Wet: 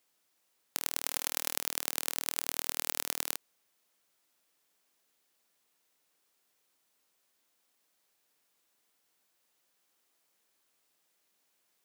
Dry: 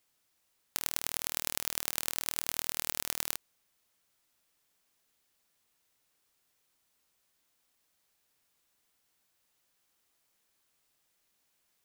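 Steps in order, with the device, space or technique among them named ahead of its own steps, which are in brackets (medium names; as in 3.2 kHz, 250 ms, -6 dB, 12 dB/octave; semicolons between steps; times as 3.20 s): 1.04–1.55 s: comb 3.8 ms, depth 31%; filter by subtraction (in parallel: low-pass 360 Hz 12 dB/octave + polarity flip)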